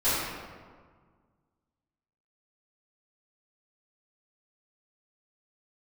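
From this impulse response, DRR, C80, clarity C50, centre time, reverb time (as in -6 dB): -16.0 dB, -0.5 dB, -2.5 dB, 118 ms, 1.7 s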